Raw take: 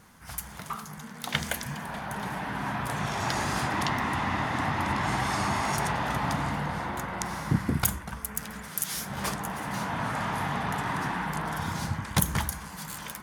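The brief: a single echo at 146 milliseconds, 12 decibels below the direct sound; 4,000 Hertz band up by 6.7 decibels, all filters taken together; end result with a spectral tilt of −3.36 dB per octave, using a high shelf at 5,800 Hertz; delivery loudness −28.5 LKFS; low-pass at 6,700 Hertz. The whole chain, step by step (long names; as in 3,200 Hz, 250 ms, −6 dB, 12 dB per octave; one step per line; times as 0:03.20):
low-pass filter 6,700 Hz
parametric band 4,000 Hz +6 dB
high-shelf EQ 5,800 Hz +8.5 dB
single-tap delay 146 ms −12 dB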